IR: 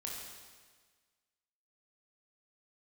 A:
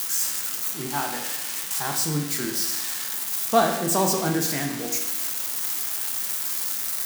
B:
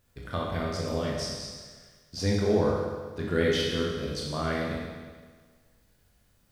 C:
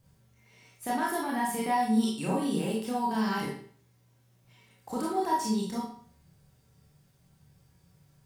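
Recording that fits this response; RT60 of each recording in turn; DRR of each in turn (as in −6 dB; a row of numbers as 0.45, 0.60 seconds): B; 1.0, 1.5, 0.50 seconds; 2.0, −3.0, −5.5 decibels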